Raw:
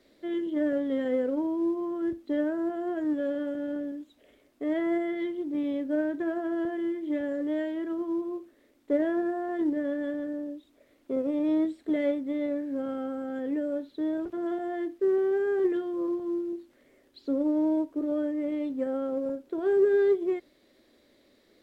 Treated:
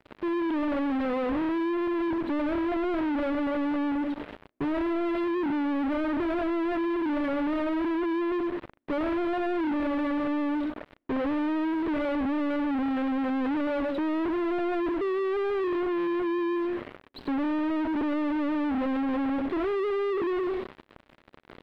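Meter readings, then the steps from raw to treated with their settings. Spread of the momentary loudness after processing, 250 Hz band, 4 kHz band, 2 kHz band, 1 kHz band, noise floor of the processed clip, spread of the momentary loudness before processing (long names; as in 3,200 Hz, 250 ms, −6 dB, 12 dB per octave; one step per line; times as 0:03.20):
3 LU, +2.0 dB, can't be measured, +6.0 dB, +9.5 dB, −59 dBFS, 8 LU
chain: low-shelf EQ 120 Hz −3 dB
notch filter 540 Hz, Q 12
on a send: tape delay 102 ms, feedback 38%, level −12.5 dB, low-pass 2,000 Hz
on the sum: downward compressor, threshold −29 dBFS, peak gain reduction 9.5 dB
in parallel at −9 dB: fuzz pedal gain 58 dB, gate −56 dBFS
on the sum: pitch vibrato 6 Hz 23 cents
leveller curve on the samples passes 3
high-frequency loss of the air 490 metres
level −8.5 dB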